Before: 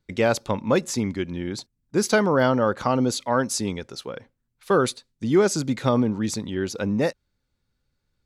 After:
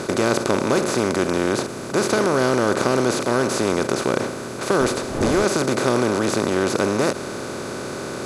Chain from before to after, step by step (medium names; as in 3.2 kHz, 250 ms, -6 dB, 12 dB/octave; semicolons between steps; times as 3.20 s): spectral levelling over time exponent 0.2; 4.80–5.43 s: wind noise 510 Hz -12 dBFS; trim -6.5 dB